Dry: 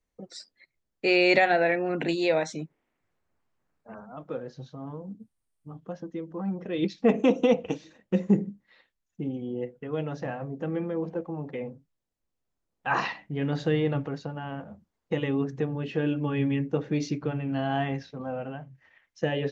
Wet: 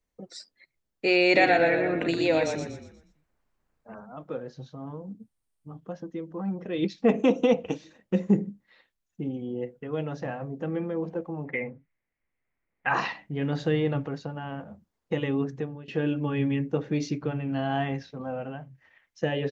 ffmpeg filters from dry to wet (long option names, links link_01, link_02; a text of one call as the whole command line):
ffmpeg -i in.wav -filter_complex "[0:a]asplit=3[link_01][link_02][link_03];[link_01]afade=type=out:start_time=1.35:duration=0.02[link_04];[link_02]asplit=6[link_05][link_06][link_07][link_08][link_09][link_10];[link_06]adelay=120,afreqshift=-30,volume=-5.5dB[link_11];[link_07]adelay=240,afreqshift=-60,volume=-13.2dB[link_12];[link_08]adelay=360,afreqshift=-90,volume=-21dB[link_13];[link_09]adelay=480,afreqshift=-120,volume=-28.7dB[link_14];[link_10]adelay=600,afreqshift=-150,volume=-36.5dB[link_15];[link_05][link_11][link_12][link_13][link_14][link_15]amix=inputs=6:normalize=0,afade=type=in:start_time=1.35:duration=0.02,afade=type=out:start_time=3.98:duration=0.02[link_16];[link_03]afade=type=in:start_time=3.98:duration=0.02[link_17];[link_04][link_16][link_17]amix=inputs=3:normalize=0,asettb=1/sr,asplit=3[link_18][link_19][link_20];[link_18]atrim=end=11.454[link_21];[link_19]atrim=start=11.45:end=12.89,asetpts=PTS-STARTPTS,afade=type=in:duration=0.004:curve=qsin,afade=type=out:start_time=1.436:duration=0.004:curve=qsin,lowpass=frequency=2100:width_type=q:width=6.8[link_22];[link_20]atrim=start=12.886[link_23];[link_21][link_22]acrossfade=duration=0.004:curve1=hsin:curve2=qsin[link_24];[link_24][link_23]acrossfade=duration=0.004:curve1=qsin:curve2=hsin,asplit=2[link_25][link_26];[link_25]atrim=end=15.88,asetpts=PTS-STARTPTS,afade=type=out:start_time=15.47:duration=0.41:silence=0.11885[link_27];[link_26]atrim=start=15.88,asetpts=PTS-STARTPTS,afade=type=in:duration=0.004:curve=hsin:silence=0.11885[link_28];[link_27][link_28]concat=n=2:v=0:a=1" out.wav